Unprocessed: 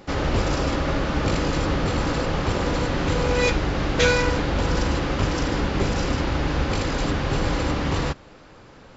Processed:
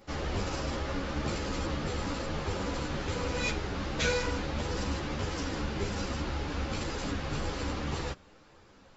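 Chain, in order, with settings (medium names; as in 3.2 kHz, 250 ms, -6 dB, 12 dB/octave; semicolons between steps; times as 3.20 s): treble shelf 5 kHz +6 dB; three-phase chorus; trim -7.5 dB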